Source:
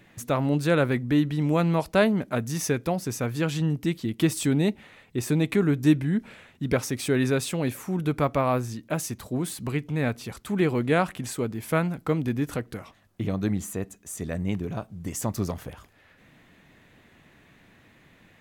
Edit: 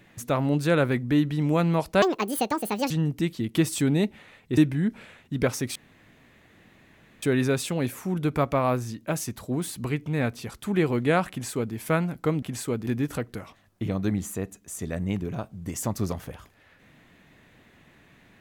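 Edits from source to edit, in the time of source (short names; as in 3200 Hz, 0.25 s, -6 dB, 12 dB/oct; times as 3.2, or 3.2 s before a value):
2.02–3.55 speed 173%
5.22–5.87 cut
7.05 insert room tone 1.47 s
11.13–11.57 copy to 12.25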